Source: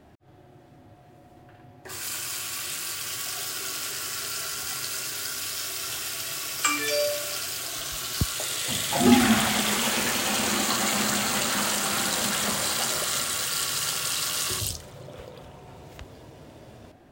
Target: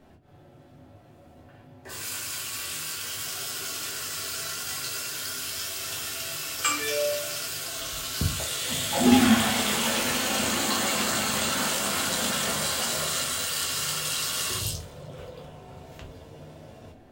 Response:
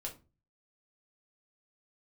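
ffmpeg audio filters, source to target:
-filter_complex "[1:a]atrim=start_sample=2205[a];[0:a][a]afir=irnorm=-1:irlink=0,volume=1dB"

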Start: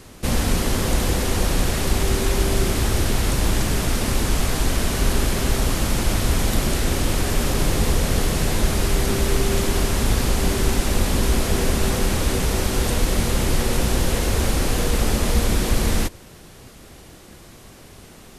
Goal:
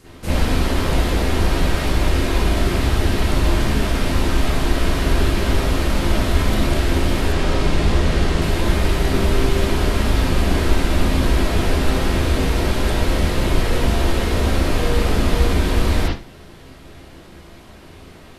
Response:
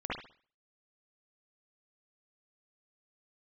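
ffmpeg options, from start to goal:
-filter_complex "[0:a]asettb=1/sr,asplit=3[a][b][c];[a]atrim=end=7.324[d];[b]atrim=start=7.32:end=8.42,asetpts=PTS-STARTPTS,afade=t=in:d=0.004:c=qsin,afade=t=out:st=1.096:d=0.004:c=qsin,lowpass=8.9k[e];[c]atrim=start=8.416[f];[d][e]acrossfade=d=0.004:c1=hsin:c2=qsin[g];[g][f]acrossfade=d=0.004:c1=qsin:c2=hsin[h];[1:a]atrim=start_sample=2205,asetrate=57330,aresample=44100[i];[h][i]afir=irnorm=-1:irlink=0"

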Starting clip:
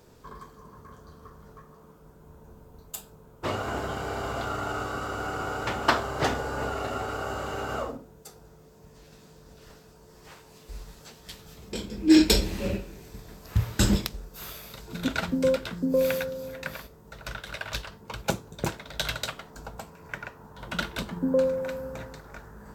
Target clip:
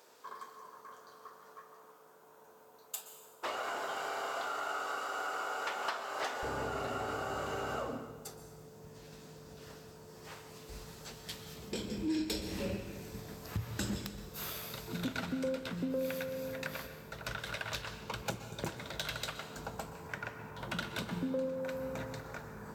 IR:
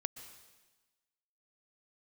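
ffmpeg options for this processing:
-filter_complex "[0:a]asetnsamples=n=441:p=0,asendcmd='6.43 highpass f 83',highpass=600,acompressor=threshold=-34dB:ratio=4,asoftclip=type=tanh:threshold=-24.5dB[a];[1:a]atrim=start_sample=2205[b];[a][b]afir=irnorm=-1:irlink=0,volume=1dB"

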